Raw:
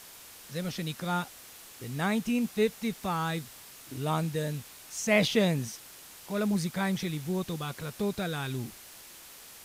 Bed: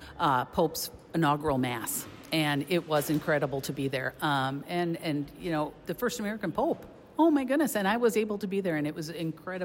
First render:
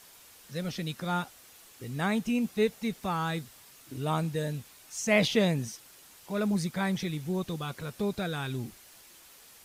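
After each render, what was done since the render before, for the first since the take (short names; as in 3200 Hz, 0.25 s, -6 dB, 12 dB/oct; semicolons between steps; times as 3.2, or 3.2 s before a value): denoiser 6 dB, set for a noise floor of -50 dBFS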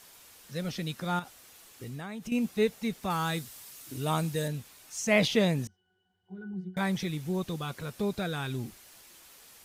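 1.19–2.32 compressor, threshold -36 dBFS; 3.1–4.48 high shelf 4100 Hz +8 dB; 5.67–6.77 octave resonator F#, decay 0.24 s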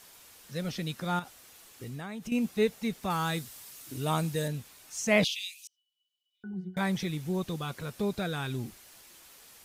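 5.24–6.44 steep high-pass 2400 Hz 72 dB/oct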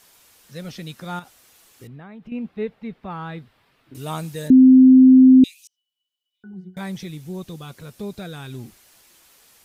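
1.87–3.95 air absorption 430 m; 4.5–5.44 bleep 259 Hz -6 dBFS; 6.7–8.53 bell 1300 Hz -4 dB 2.5 oct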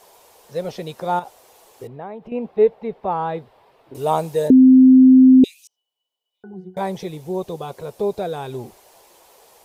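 band shelf 620 Hz +14 dB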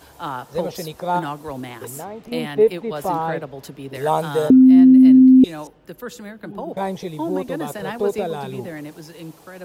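add bed -3 dB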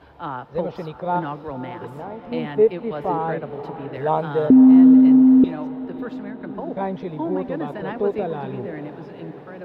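air absorption 380 m; diffused feedback echo 0.562 s, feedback 61%, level -13 dB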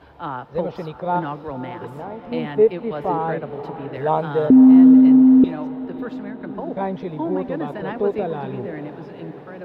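gain +1 dB; limiter -3 dBFS, peak gain reduction 1 dB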